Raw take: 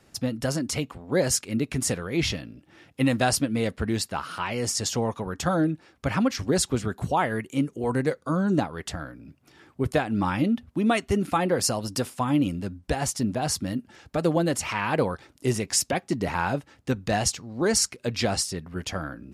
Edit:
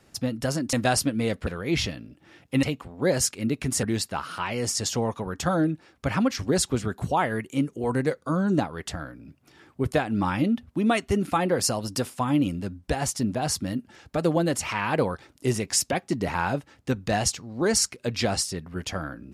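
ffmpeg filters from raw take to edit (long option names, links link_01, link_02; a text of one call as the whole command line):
ffmpeg -i in.wav -filter_complex "[0:a]asplit=5[link_01][link_02][link_03][link_04][link_05];[link_01]atrim=end=0.732[link_06];[link_02]atrim=start=3.088:end=3.832[link_07];[link_03]atrim=start=1.928:end=3.092[link_08];[link_04]atrim=start=0.728:end=1.932[link_09];[link_05]atrim=start=3.828[link_10];[link_06][link_07]acrossfade=duration=0.004:curve1=hsin:curve2=hsin[link_11];[link_11][link_08]acrossfade=duration=0.004:curve1=hsin:curve2=hsin[link_12];[link_12][link_09]acrossfade=duration=0.004:curve1=hsin:curve2=hsin[link_13];[link_13][link_10]acrossfade=duration=0.004:curve1=hsin:curve2=hsin" out.wav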